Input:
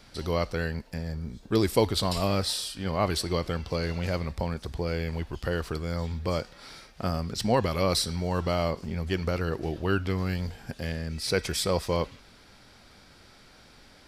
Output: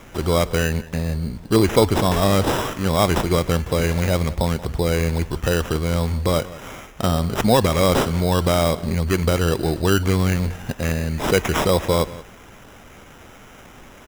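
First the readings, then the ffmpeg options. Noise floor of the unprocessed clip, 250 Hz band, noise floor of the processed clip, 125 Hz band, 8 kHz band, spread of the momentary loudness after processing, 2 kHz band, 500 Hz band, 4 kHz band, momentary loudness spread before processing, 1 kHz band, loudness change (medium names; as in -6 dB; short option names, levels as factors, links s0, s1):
-54 dBFS, +9.5 dB, -44 dBFS, +9.5 dB, +7.5 dB, 7 LU, +9.0 dB, +9.0 dB, +5.5 dB, 9 LU, +9.0 dB, +9.0 dB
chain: -filter_complex "[0:a]asplit=2[s0][s1];[s1]alimiter=limit=0.106:level=0:latency=1:release=103,volume=0.794[s2];[s0][s2]amix=inputs=2:normalize=0,acrusher=samples=10:mix=1:aa=0.000001,asplit=2[s3][s4];[s4]adelay=180.8,volume=0.126,highshelf=f=4000:g=-4.07[s5];[s3][s5]amix=inputs=2:normalize=0,volume=1.78"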